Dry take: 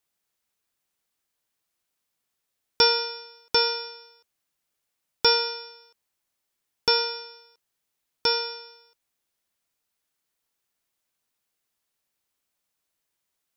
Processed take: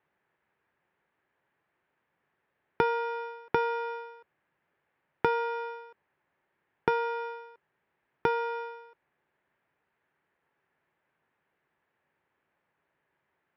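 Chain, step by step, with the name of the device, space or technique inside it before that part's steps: bass amplifier (compressor 4:1, threshold -34 dBFS, peak gain reduction 16 dB; speaker cabinet 64–2300 Hz, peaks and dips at 150 Hz +6 dB, 380 Hz +6 dB, 550 Hz +3 dB, 890 Hz +5 dB, 1700 Hz +6 dB); gain +8 dB

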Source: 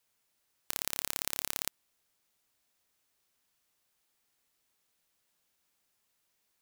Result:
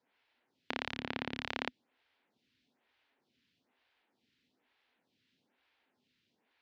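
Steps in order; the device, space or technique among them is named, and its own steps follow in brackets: vibe pedal into a guitar amplifier (photocell phaser 1.1 Hz; tube stage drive 26 dB, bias 0.8; speaker cabinet 82–3800 Hz, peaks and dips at 250 Hz +9 dB, 610 Hz -4 dB, 1200 Hz -7 dB); gain +15 dB

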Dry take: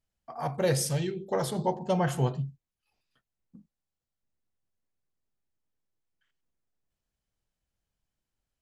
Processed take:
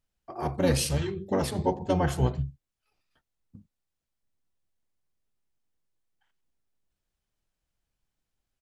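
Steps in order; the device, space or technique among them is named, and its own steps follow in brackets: octave pedal (harmoniser -12 st -3 dB)

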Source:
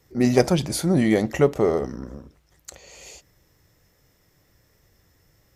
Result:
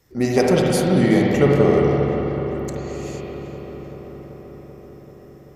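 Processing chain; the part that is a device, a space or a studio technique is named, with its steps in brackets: dub delay into a spring reverb (darkening echo 0.386 s, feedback 77%, low-pass 3800 Hz, level -12.5 dB; spring tank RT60 3.3 s, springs 43/58 ms, chirp 50 ms, DRR -3 dB)

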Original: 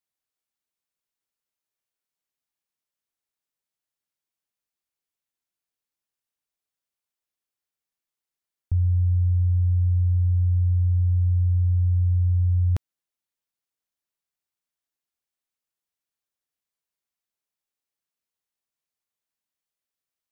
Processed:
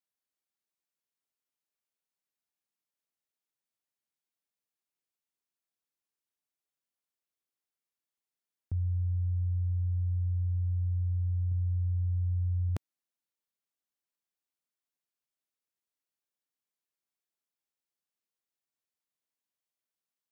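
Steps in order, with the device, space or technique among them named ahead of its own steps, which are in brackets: 11.51–12.69 dynamic EQ 120 Hz, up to +5 dB, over -47 dBFS, Q 6.4; filter by subtraction (in parallel: LPF 220 Hz 12 dB/oct + phase invert); on the sum: gain -5 dB

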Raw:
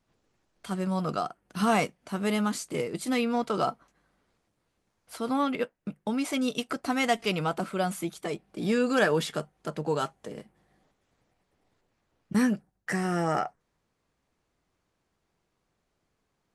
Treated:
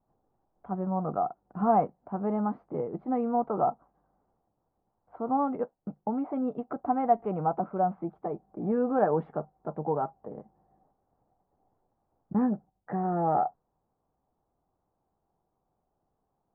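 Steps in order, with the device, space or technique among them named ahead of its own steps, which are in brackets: under water (LPF 1100 Hz 24 dB/oct; bell 780 Hz +9.5 dB 0.4 oct); gain -2 dB

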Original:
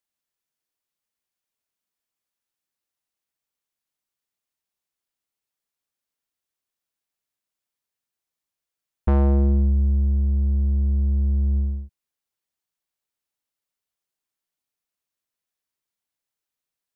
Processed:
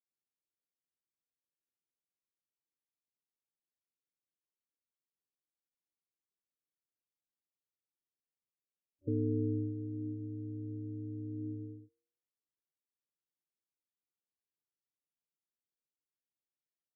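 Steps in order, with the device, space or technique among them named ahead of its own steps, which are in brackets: FFT band-pass 190–470 Hz; alien voice (ring modulator 100 Hz; flange 0.14 Hz, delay 9.7 ms, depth 8.1 ms, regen +85%); gain +1.5 dB

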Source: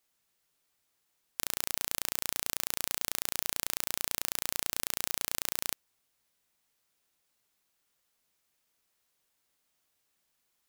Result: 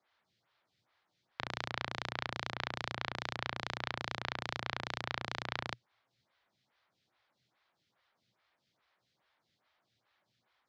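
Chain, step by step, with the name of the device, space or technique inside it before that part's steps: vibe pedal into a guitar amplifier (photocell phaser 2.4 Hz; tube stage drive 20 dB, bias 0.35; speaker cabinet 75–4200 Hz, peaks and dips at 120 Hz +9 dB, 280 Hz -5 dB, 440 Hz -7 dB, 2700 Hz -5 dB); gain +11 dB

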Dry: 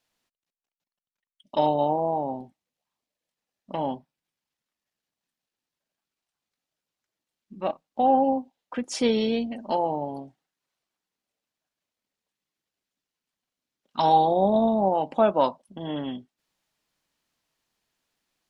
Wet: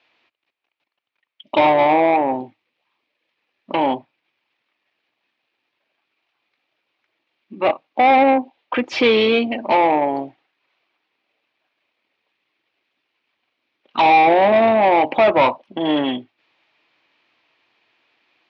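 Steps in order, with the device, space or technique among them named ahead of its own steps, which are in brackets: 2.16–3.91 bell 690 Hz -5.5 dB 0.56 oct; overdrive pedal into a guitar cabinet (overdrive pedal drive 22 dB, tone 3400 Hz, clips at -8.5 dBFS; speaker cabinet 92–4000 Hz, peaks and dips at 110 Hz +7 dB, 180 Hz -6 dB, 330 Hz +6 dB, 1500 Hz -3 dB, 2400 Hz +7 dB); gain +2 dB

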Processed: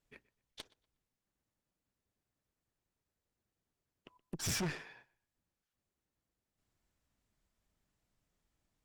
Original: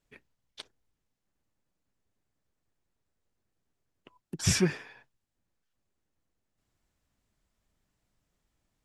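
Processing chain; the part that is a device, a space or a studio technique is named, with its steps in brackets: rockabilly slapback (tube stage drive 33 dB, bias 0.7; tape echo 0.122 s, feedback 27%, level -21.5 dB, low-pass 4900 Hz)

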